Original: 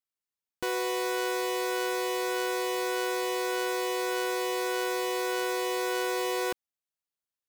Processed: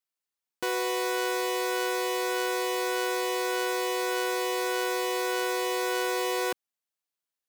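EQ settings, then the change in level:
high-pass filter 240 Hz 6 dB per octave
+2.0 dB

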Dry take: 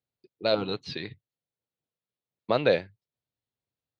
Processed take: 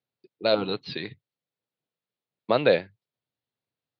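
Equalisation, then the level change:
high-pass filter 120 Hz
Butterworth low-pass 4,800 Hz
+2.5 dB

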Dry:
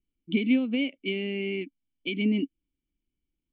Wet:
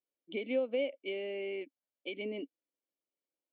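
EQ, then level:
high-pass with resonance 560 Hz, resonance Q 4.9
high-frequency loss of the air 140 metres
parametric band 2,600 Hz −4.5 dB 0.89 octaves
−4.5 dB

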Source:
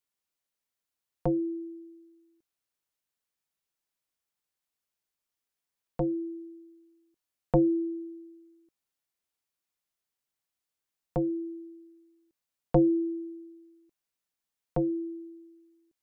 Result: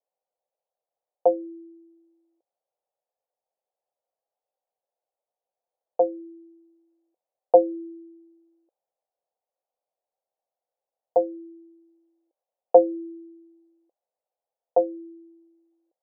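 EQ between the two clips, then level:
high-pass with resonance 520 Hz, resonance Q 4.9
low-pass with resonance 760 Hz, resonance Q 4.4
−4.5 dB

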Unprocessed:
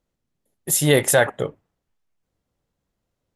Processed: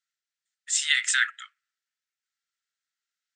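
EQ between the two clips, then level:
dynamic equaliser 2,800 Hz, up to +5 dB, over −38 dBFS, Q 1.8
Chebyshev high-pass with heavy ripple 1,300 Hz, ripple 3 dB
linear-phase brick-wall low-pass 8,900 Hz
0.0 dB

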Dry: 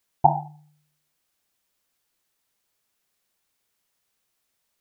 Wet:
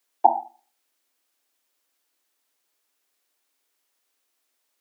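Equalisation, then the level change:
Butterworth high-pass 240 Hz 96 dB per octave
+1.0 dB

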